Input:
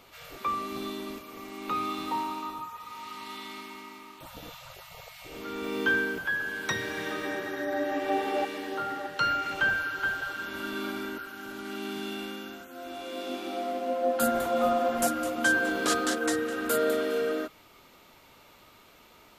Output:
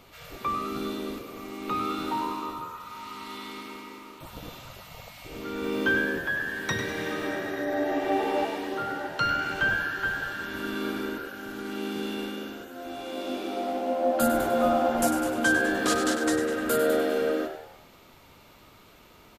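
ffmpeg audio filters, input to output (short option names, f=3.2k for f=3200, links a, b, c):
-filter_complex "[0:a]lowshelf=f=270:g=7.5,asplit=6[a][b][c][d][e][f];[b]adelay=99,afreqshift=76,volume=-9dB[g];[c]adelay=198,afreqshift=152,volume=-15.9dB[h];[d]adelay=297,afreqshift=228,volume=-22.9dB[i];[e]adelay=396,afreqshift=304,volume=-29.8dB[j];[f]adelay=495,afreqshift=380,volume=-36.7dB[k];[a][g][h][i][j][k]amix=inputs=6:normalize=0"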